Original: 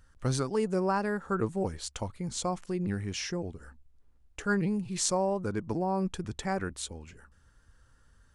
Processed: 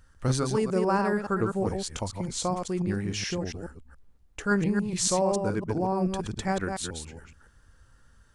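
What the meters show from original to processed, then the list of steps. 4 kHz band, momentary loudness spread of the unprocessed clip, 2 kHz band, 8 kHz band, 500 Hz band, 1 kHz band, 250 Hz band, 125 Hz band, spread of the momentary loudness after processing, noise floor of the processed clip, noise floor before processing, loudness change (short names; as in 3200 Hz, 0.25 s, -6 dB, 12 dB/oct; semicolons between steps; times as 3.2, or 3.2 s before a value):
+3.5 dB, 9 LU, +3.5 dB, +3.5 dB, +3.5 dB, +3.5 dB, +3.5 dB, +3.5 dB, 10 LU, -59 dBFS, -63 dBFS, +3.5 dB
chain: reverse delay 0.141 s, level -5 dB; gain +2.5 dB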